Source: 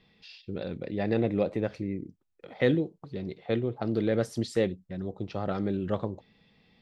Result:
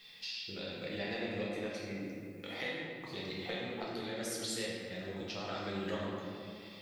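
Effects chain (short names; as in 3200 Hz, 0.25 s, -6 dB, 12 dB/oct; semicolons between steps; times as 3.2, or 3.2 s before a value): pre-emphasis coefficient 0.97; compressor, threshold -57 dBFS, peak gain reduction 18.5 dB; tremolo 0.87 Hz, depth 30%; reverb RT60 2.5 s, pre-delay 6 ms, DRR -5.5 dB; gain +16.5 dB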